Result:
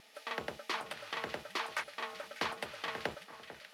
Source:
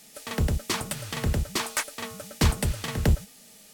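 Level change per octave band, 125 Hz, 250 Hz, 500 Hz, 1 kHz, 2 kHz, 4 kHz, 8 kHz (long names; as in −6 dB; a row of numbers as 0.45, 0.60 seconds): −31.0, −18.5, −8.0, −4.0, −4.5, −8.5, −20.0 decibels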